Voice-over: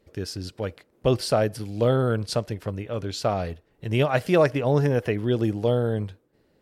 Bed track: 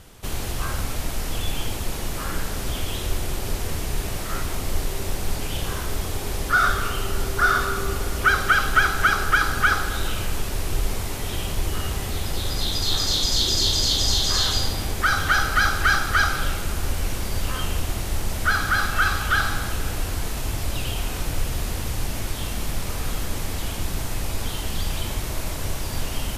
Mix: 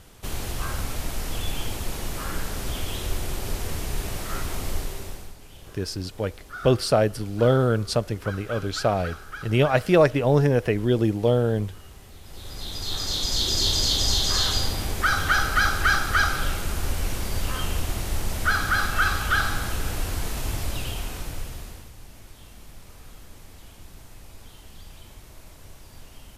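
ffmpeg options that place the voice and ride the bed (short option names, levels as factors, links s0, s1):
-filter_complex "[0:a]adelay=5600,volume=1.26[s0];[1:a]volume=5.62,afade=t=out:st=4.67:d=0.67:silence=0.149624,afade=t=in:st=12.22:d=1.49:silence=0.133352,afade=t=out:st=20.54:d=1.37:silence=0.141254[s1];[s0][s1]amix=inputs=2:normalize=0"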